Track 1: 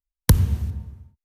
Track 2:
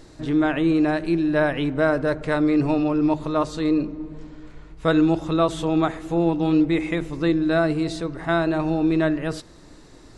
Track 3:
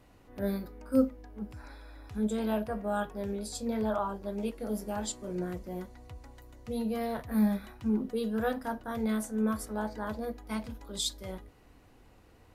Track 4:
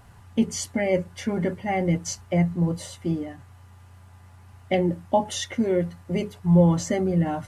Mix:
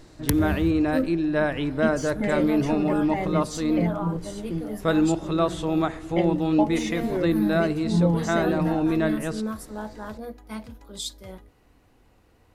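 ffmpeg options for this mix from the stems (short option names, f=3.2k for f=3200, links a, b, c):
-filter_complex "[0:a]acompressor=threshold=-20dB:ratio=6,volume=-2.5dB[a];[1:a]volume=-3dB[b];[2:a]volume=-0.5dB[c];[3:a]deesser=0.65,adelay=1450,volume=-4.5dB[d];[a][b][c][d]amix=inputs=4:normalize=0"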